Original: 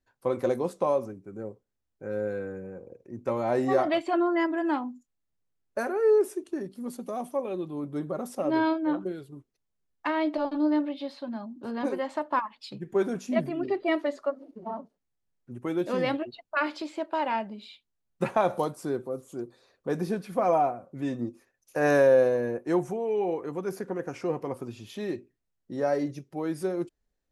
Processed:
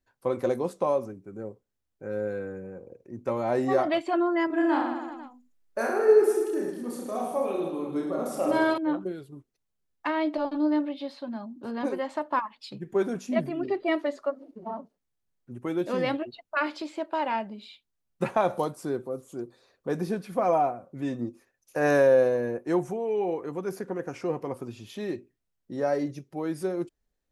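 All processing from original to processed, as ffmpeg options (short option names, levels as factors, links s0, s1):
-filter_complex "[0:a]asettb=1/sr,asplit=3[s0][s1][s2];[s0]atrim=end=4.474[s3];[s1]atrim=start=4.47:end=8.78,asetpts=PTS-STARTPTS,afade=t=in:d=0.004:c=qsin,afade=t=out:st=4.306:d=0.004:c=qsin,equalizer=f=130:w=0.96:g=-7,aecho=1:1:30|66|109.2|161|223.2|297.9|387.5|495:0.794|0.631|0.501|0.398|0.316|0.251|0.2|0.158,atrim=end_sample=190071[s4];[s2]atrim=start=8.776[s5];[s3][s4]acrossfade=d=0.004:c1=hsin:c2=qsin[s6];[s6][s5]acrossfade=d=0.004:c1=qsin:c2=hsin"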